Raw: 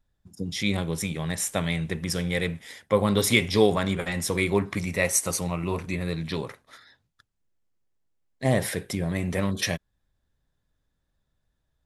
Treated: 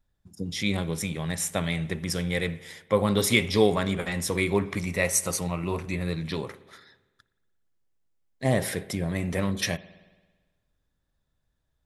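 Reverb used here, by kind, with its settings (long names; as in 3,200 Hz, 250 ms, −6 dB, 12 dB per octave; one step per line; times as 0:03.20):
spring reverb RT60 1.3 s, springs 56 ms, chirp 45 ms, DRR 17.5 dB
level −1 dB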